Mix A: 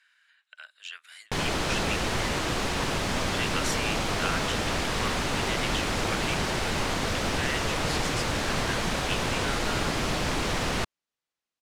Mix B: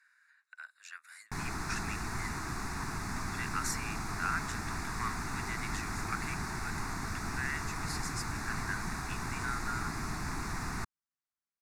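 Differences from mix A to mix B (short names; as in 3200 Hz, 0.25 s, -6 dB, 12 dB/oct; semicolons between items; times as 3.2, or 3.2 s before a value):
background -6.5 dB; master: add fixed phaser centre 1300 Hz, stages 4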